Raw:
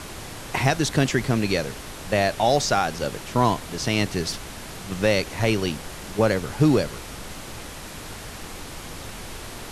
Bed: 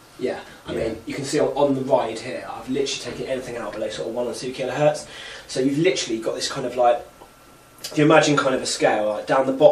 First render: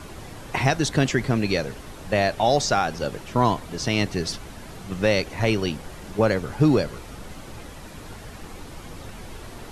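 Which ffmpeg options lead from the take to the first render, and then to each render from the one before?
-af "afftdn=nr=8:nf=-38"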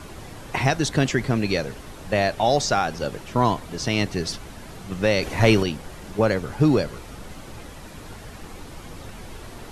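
-filter_complex "[0:a]asettb=1/sr,asplit=3[a][b][c];[a]atrim=end=5.224[d];[b]atrim=start=5.22:end=5.63,asetpts=PTS-STARTPTS,afade=t=in:d=0.004:c=qsin,afade=t=out:st=0.406:d=0.004:c=qsin,acontrast=51[e];[c]atrim=start=5.626[f];[d][e]acrossfade=d=0.004:c1=hsin:c2=qsin[g];[g][f]acrossfade=d=0.004:c1=qsin:c2=hsin"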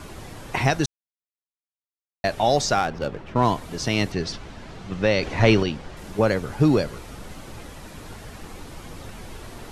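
-filter_complex "[0:a]asettb=1/sr,asplit=3[a][b][c];[a]atrim=end=2.784[d];[b]atrim=start=2.78:end=3.48,asetpts=PTS-STARTPTS,afade=t=in:d=0.004:c=qsin,afade=t=out:st=0.696:d=0.004:c=qsin,adynamicsmooth=sensitivity=3.5:basefreq=2.2k[e];[c]atrim=start=3.476[f];[d][e]acrossfade=d=0.004:c1=hsin:c2=qsin[g];[g][f]acrossfade=d=0.004:c1=qsin:c2=hsin,asettb=1/sr,asplit=3[h][i][j];[h]atrim=end=4.124[k];[i]atrim=start=4.12:end=5.97,asetpts=PTS-STARTPTS,afade=t=in:d=0.004:c=qsin,afade=t=out:st=1.846:d=0.004:c=qsin,lowpass=5.3k[l];[j]atrim=start=5.966[m];[k][l]acrossfade=d=0.004:c1=hsin:c2=qsin[n];[n][m]acrossfade=d=0.004:c1=qsin:c2=hsin,asplit=3[o][p][q];[o]atrim=end=0.86,asetpts=PTS-STARTPTS,afade=t=out:st=0.856:d=0.004:c=hsin[r];[p]atrim=start=0.86:end=2.24,asetpts=PTS-STARTPTS,volume=0[s];[q]atrim=start=2.24,asetpts=PTS-STARTPTS,afade=t=in:d=0.004:c=hsin[t];[r][s][t]concat=n=3:v=0:a=1"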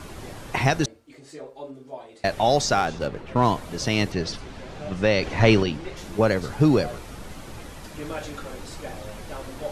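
-filter_complex "[1:a]volume=-19.5dB[a];[0:a][a]amix=inputs=2:normalize=0"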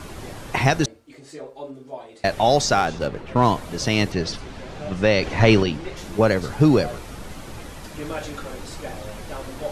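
-af "volume=2.5dB,alimiter=limit=-3dB:level=0:latency=1"

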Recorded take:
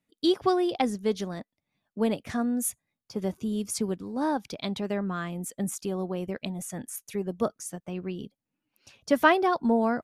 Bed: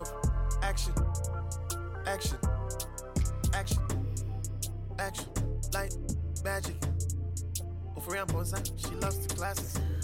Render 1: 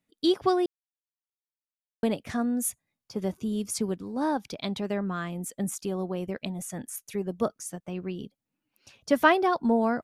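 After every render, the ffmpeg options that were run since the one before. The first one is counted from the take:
-filter_complex "[0:a]asplit=3[a][b][c];[a]atrim=end=0.66,asetpts=PTS-STARTPTS,afade=t=out:st=0.656:d=0.004:c=hsin[d];[b]atrim=start=0.66:end=2.03,asetpts=PTS-STARTPTS,volume=0[e];[c]atrim=start=2.03,asetpts=PTS-STARTPTS,afade=t=in:d=0.004:c=hsin[f];[d][e][f]concat=n=3:v=0:a=1"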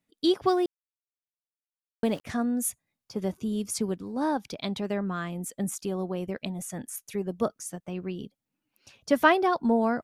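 -filter_complex "[0:a]asettb=1/sr,asplit=3[a][b][c];[a]atrim=end=0.464[d];[b]atrim=start=0.46:end=2.24,asetpts=PTS-STARTPTS,afade=t=in:d=0.004:c=qsin,afade=t=out:st=1.776:d=0.004:c=qsin,aeval=exprs='val(0)*gte(abs(val(0)),0.00562)':c=same[e];[c]atrim=start=2.236[f];[d][e]acrossfade=d=0.004:c1=hsin:c2=qsin[g];[g][f]acrossfade=d=0.004:c1=qsin:c2=hsin"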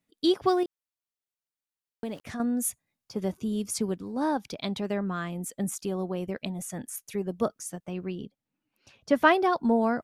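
-filter_complex "[0:a]asettb=1/sr,asplit=3[a][b][c];[a]atrim=end=0.634[d];[b]atrim=start=0.63:end=2.4,asetpts=PTS-STARTPTS,afade=t=in:d=0.004:c=qsin,afade=t=out:st=1.766:d=0.004:c=qsin,acompressor=threshold=-37dB:ratio=2:attack=3.2:release=140:knee=1:detection=peak[e];[c]atrim=start=2.396[f];[d][e]acrossfade=d=0.004:c1=hsin:c2=qsin[g];[g][f]acrossfade=d=0.004:c1=qsin:c2=hsin,asettb=1/sr,asplit=3[h][i][j];[h]atrim=end=8.154[k];[i]atrim=start=8.15:end=9.27,asetpts=PTS-STARTPTS,afade=t=in:d=0.004:c=qsin,afade=t=out:st=1.116:d=0.004:c=qsin,highshelf=f=5.4k:g=-10[l];[j]atrim=start=9.266[m];[k][l]acrossfade=d=0.004:c1=hsin:c2=qsin[n];[n][m]acrossfade=d=0.004:c1=qsin:c2=hsin"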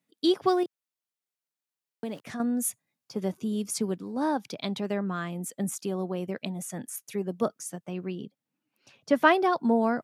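-af "highpass=f=120:w=0.5412,highpass=f=120:w=1.3066"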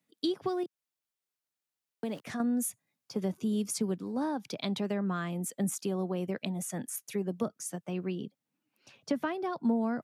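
-filter_complex "[0:a]acrossover=split=230[a][b];[b]acompressor=threshold=-31dB:ratio=10[c];[a][c]amix=inputs=2:normalize=0"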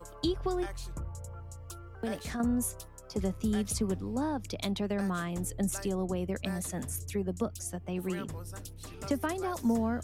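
-filter_complex "[1:a]volume=-9.5dB[a];[0:a][a]amix=inputs=2:normalize=0"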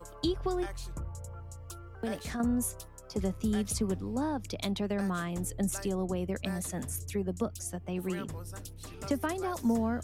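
-af anull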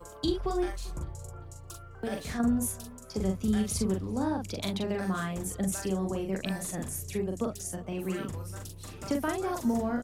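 -filter_complex "[0:a]asplit=2[a][b];[b]adelay=42,volume=-3.5dB[c];[a][c]amix=inputs=2:normalize=0,asplit=2[d][e];[e]adelay=394,lowpass=f=4.3k:p=1,volume=-22.5dB,asplit=2[f][g];[g]adelay=394,lowpass=f=4.3k:p=1,volume=0.51,asplit=2[h][i];[i]adelay=394,lowpass=f=4.3k:p=1,volume=0.51[j];[d][f][h][j]amix=inputs=4:normalize=0"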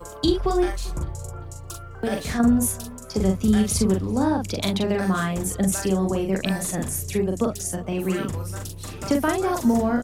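-af "volume=8.5dB"

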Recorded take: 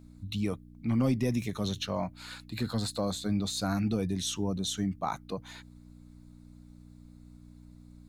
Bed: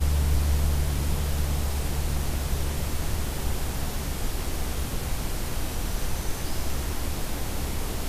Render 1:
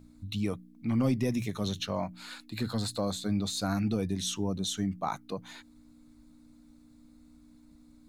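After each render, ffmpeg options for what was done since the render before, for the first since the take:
-af "bandreject=f=60:t=h:w=4,bandreject=f=120:t=h:w=4,bandreject=f=180:t=h:w=4"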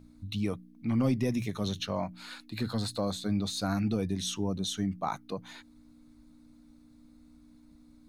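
-af "highshelf=f=8.8k:g=-3.5,bandreject=f=7.4k:w=9.9"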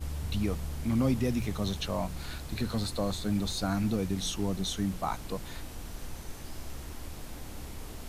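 -filter_complex "[1:a]volume=-12.5dB[a];[0:a][a]amix=inputs=2:normalize=0"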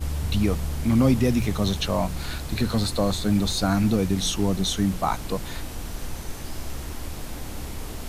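-af "volume=8dB"

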